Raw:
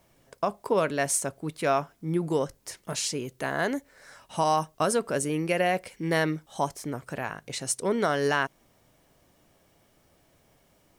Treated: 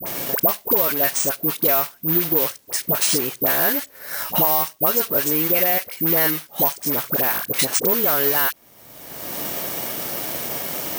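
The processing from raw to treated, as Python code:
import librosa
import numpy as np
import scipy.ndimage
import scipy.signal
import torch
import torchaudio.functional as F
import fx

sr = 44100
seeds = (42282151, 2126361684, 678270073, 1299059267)

y = fx.block_float(x, sr, bits=3)
y = fx.highpass(y, sr, hz=210.0, slope=6)
y = fx.high_shelf(y, sr, hz=5400.0, db=4.5)
y = fx.dispersion(y, sr, late='highs', ms=64.0, hz=830.0)
y = (np.kron(scipy.signal.resample_poly(y, 1, 3), np.eye(3)[0]) * 3)[:len(y)]
y = fx.band_squash(y, sr, depth_pct=100)
y = y * 10.0 ** (3.0 / 20.0)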